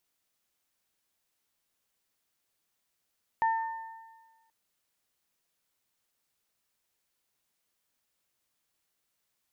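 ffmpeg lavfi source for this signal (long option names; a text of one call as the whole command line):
ffmpeg -f lavfi -i "aevalsrc='0.0794*pow(10,-3*t/1.39)*sin(2*PI*901*t)+0.0251*pow(10,-3*t/1.37)*sin(2*PI*1802*t)':duration=1.08:sample_rate=44100" out.wav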